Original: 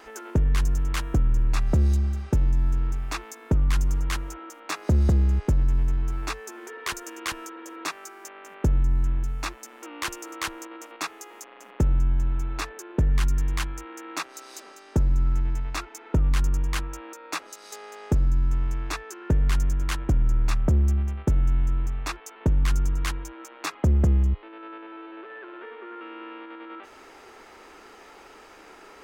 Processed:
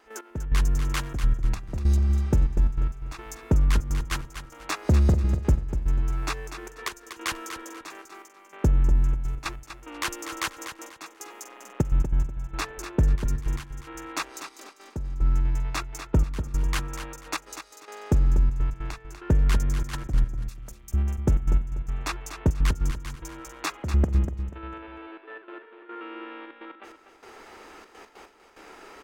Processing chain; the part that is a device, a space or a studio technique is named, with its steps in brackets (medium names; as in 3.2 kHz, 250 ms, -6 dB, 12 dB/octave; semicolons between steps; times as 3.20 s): 20.46–20.94 s: differentiator; trance gate with a delay (trance gate ".x...xxxxxx.x" 146 bpm -12 dB; feedback delay 244 ms, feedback 27%, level -9.5 dB); trim +1 dB